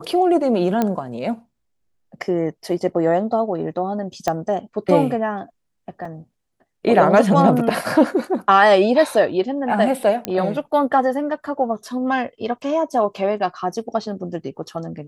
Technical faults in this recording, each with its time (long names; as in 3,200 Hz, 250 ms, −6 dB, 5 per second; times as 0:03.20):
0:00.82: click −7 dBFS
0:04.28: click −7 dBFS
0:06.05: drop-out 4 ms
0:10.25: click −7 dBFS